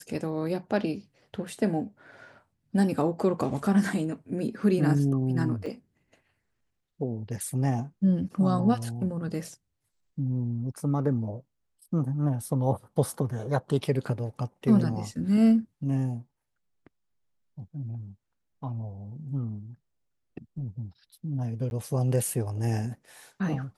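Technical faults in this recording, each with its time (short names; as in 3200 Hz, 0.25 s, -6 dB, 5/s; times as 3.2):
5.66 gap 4.7 ms
21.7–21.71 gap 11 ms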